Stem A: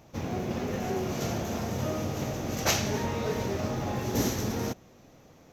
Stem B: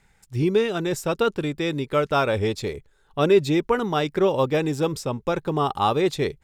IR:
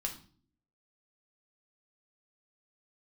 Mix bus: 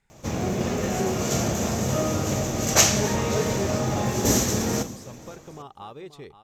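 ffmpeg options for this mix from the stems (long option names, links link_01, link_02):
-filter_complex "[0:a]equalizer=frequency=7600:width_type=o:width=0.55:gain=12,adelay=100,volume=2.5dB,asplit=3[link_01][link_02][link_03];[link_02]volume=-5.5dB[link_04];[link_03]volume=-18dB[link_05];[1:a]acompressor=threshold=-33dB:ratio=2,volume=-11dB,asplit=2[link_06][link_07];[link_07]volume=-13dB[link_08];[2:a]atrim=start_sample=2205[link_09];[link_04][link_09]afir=irnorm=-1:irlink=0[link_10];[link_05][link_08]amix=inputs=2:normalize=0,aecho=0:1:531:1[link_11];[link_01][link_06][link_10][link_11]amix=inputs=4:normalize=0"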